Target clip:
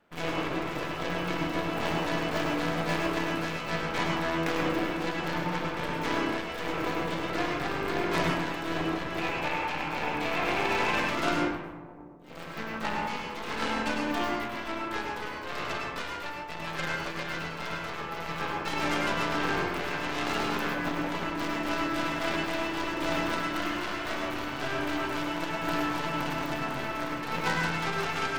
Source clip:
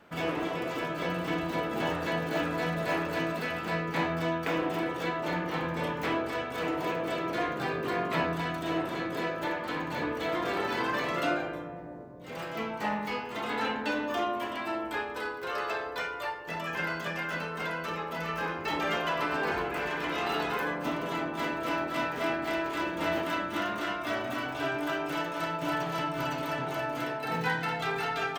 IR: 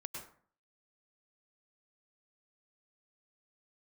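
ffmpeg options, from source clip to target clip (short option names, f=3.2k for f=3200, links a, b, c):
-filter_complex "[0:a]aeval=exprs='0.178*(cos(1*acos(clip(val(0)/0.178,-1,1)))-cos(1*PI/2))+0.02*(cos(6*acos(clip(val(0)/0.178,-1,1)))-cos(6*PI/2))+0.0178*(cos(7*acos(clip(val(0)/0.178,-1,1)))-cos(7*PI/2))+0.0316*(cos(8*acos(clip(val(0)/0.178,-1,1)))-cos(8*PI/2))':c=same,asettb=1/sr,asplit=3[a][b][c];[a]atrim=end=9.184[d];[b]atrim=start=9.18:end=11,asetpts=PTS-STARTPTS,afade=t=in:d=0.004:c=qsin,afade=t=out:st=1.816:d=0.004:c=qsin,equalizer=f=315:t=o:w=0.33:g=-4,equalizer=f=800:t=o:w=0.33:g=7,equalizer=f=2.5k:t=o:w=0.33:g=9[e];[c]atrim=start=10.996[f];[d][e]acrossfade=d=0.004:c1=hsin:c2=qsin[g];[g][f]acrossfade=d=0.004:c1=qsin:c2=hsin[h];[1:a]atrim=start_sample=2205[i];[h][i]afir=irnorm=-1:irlink=0,volume=5dB"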